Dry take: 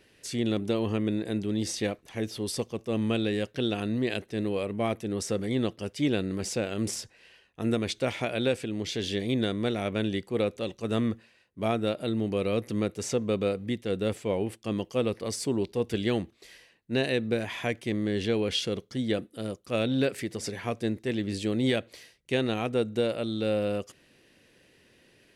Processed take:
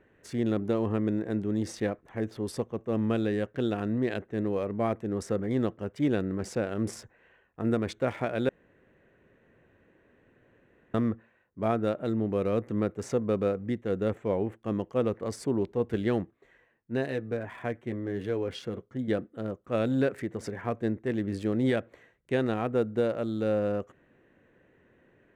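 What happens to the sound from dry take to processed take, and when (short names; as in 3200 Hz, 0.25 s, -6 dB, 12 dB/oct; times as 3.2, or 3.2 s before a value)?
8.49–10.94 room tone
16.23–19.08 flange 1 Hz, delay 6.4 ms, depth 2.3 ms, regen -39%
whole clip: Wiener smoothing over 9 samples; resonant high shelf 2100 Hz -7.5 dB, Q 1.5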